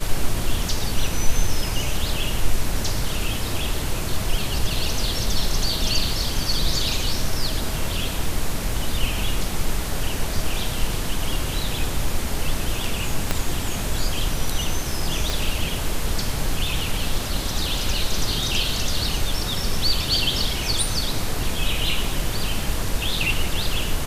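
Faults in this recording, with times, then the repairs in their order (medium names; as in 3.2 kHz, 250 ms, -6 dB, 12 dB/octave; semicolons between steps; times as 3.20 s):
13.31 s: pop -5 dBFS
15.30 s: pop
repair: de-click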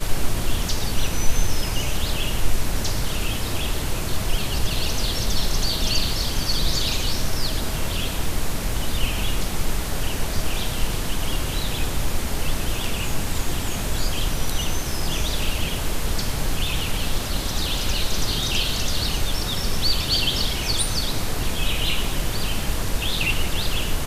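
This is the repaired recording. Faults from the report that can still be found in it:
13.31 s: pop
15.30 s: pop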